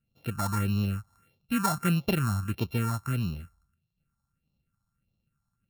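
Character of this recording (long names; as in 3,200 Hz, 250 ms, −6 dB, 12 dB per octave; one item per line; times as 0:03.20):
a buzz of ramps at a fixed pitch in blocks of 32 samples
phaser sweep stages 4, 1.6 Hz, lowest notch 420–1,600 Hz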